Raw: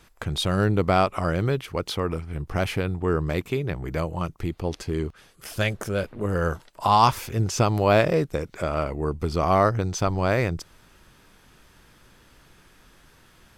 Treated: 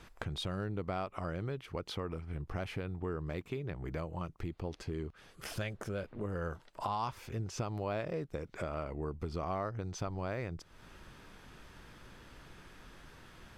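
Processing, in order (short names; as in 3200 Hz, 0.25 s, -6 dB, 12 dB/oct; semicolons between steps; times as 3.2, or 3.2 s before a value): LPF 3900 Hz 6 dB/oct; compressor 3:1, threshold -41 dBFS, peak gain reduction 20.5 dB; gain +1 dB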